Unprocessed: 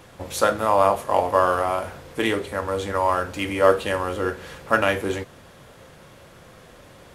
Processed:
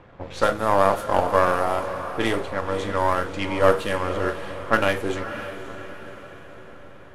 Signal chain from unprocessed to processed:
gain on one half-wave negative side −7 dB
low-pass that shuts in the quiet parts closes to 1,800 Hz, open at −19.5 dBFS
feedback delay with all-pass diffusion 562 ms, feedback 49%, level −11 dB
level +1.5 dB

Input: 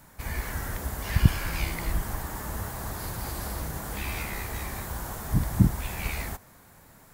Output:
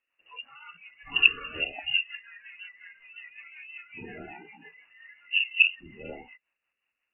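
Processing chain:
voice inversion scrambler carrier 2,800 Hz
noise reduction from a noise print of the clip's start 26 dB
rotating-speaker cabinet horn 5.5 Hz

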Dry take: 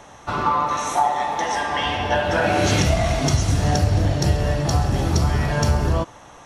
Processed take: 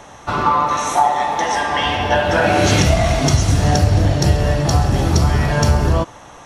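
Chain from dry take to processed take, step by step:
0:01.83–0:03.86: surface crackle 80 per second −40 dBFS
level +4.5 dB

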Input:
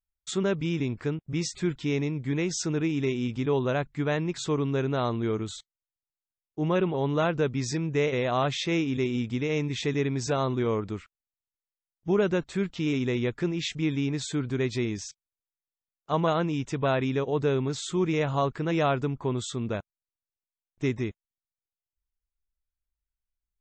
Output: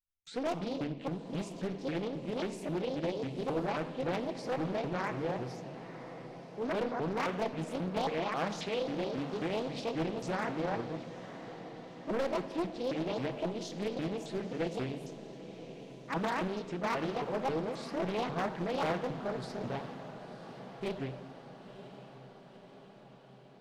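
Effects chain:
pitch shifter swept by a sawtooth +11 semitones, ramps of 269 ms
low-pass filter 4,400 Hz 12 dB per octave
wave folding −19.5 dBFS
mains-hum notches 50/100/150 Hz
feedback delay with all-pass diffusion 968 ms, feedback 63%, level −13 dB
rectangular room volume 1,800 cubic metres, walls mixed, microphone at 0.69 metres
highs frequency-modulated by the lows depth 0.65 ms
level −7 dB

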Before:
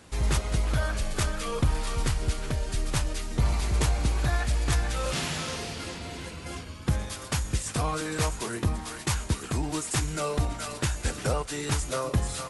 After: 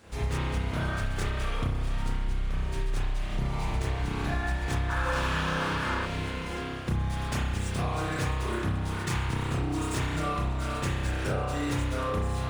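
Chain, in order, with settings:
running median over 3 samples
on a send: delay that swaps between a low-pass and a high-pass 469 ms, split 820 Hz, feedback 71%, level −12 dB
on the sum: spring reverb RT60 1.3 s, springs 31 ms, chirp 50 ms, DRR −8.5 dB
downward compressor, threshold −21 dBFS, peak gain reduction 12 dB
sound drawn into the spectrogram noise, 0:04.89–0:06.06, 830–1,800 Hz −29 dBFS
level −4.5 dB

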